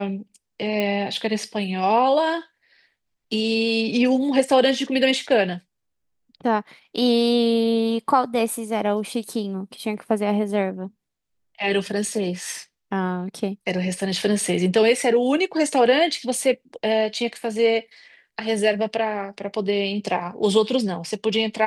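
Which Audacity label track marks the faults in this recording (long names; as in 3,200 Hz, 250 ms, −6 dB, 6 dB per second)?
0.800000	0.800000	click −11 dBFS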